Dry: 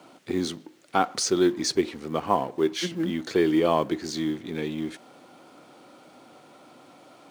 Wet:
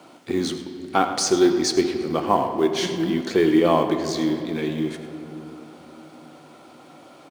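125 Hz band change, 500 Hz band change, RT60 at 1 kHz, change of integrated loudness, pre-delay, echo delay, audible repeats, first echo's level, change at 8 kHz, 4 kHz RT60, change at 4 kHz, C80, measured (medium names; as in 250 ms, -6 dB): +4.5 dB, +4.5 dB, 2.5 s, +4.5 dB, 3 ms, 103 ms, 1, -14.5 dB, +3.5 dB, 1.6 s, +3.5 dB, 8.0 dB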